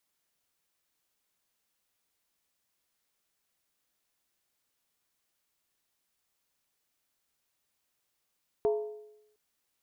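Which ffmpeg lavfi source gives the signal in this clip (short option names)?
-f lavfi -i "aevalsrc='0.0794*pow(10,-3*t/0.87)*sin(2*PI*424*t)+0.0282*pow(10,-3*t/0.689)*sin(2*PI*675.9*t)+0.01*pow(10,-3*t/0.595)*sin(2*PI*905.7*t)+0.00355*pow(10,-3*t/0.574)*sin(2*PI*973.5*t)+0.00126*pow(10,-3*t/0.534)*sin(2*PI*1124.9*t)':d=0.71:s=44100"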